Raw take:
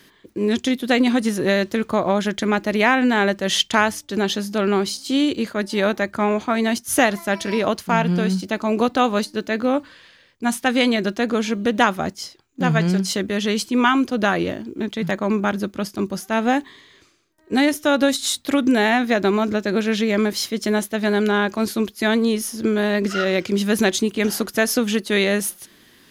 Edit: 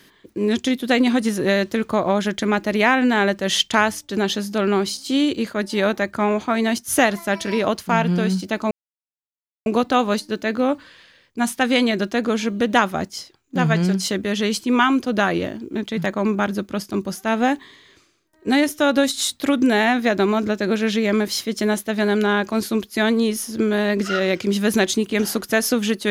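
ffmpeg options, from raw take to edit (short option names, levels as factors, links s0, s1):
-filter_complex "[0:a]asplit=2[s0][s1];[s0]atrim=end=8.71,asetpts=PTS-STARTPTS,afade=t=out:st=8.706:d=0.004:c=hsin,apad=pad_dur=0.95[s2];[s1]atrim=start=8.71,asetpts=PTS-STARTPTS,afade=t=in:d=0.004:c=hsin[s3];[s2][s3]concat=n=2:v=0:a=1"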